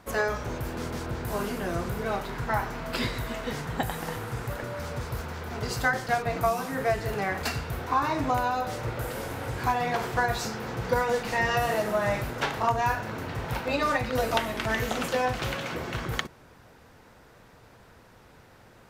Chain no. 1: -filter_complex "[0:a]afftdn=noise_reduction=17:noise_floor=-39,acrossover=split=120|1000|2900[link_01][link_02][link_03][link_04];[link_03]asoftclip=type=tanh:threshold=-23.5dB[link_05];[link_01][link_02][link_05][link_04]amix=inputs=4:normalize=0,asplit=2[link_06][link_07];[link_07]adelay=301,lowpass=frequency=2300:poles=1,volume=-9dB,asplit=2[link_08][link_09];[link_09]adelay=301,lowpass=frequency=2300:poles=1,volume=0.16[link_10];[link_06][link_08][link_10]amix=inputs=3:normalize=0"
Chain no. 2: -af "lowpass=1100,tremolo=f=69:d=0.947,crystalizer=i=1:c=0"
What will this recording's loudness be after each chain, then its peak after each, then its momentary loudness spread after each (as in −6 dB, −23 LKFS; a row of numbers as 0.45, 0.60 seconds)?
−29.5, −35.0 LKFS; −12.0, −14.5 dBFS; 8, 8 LU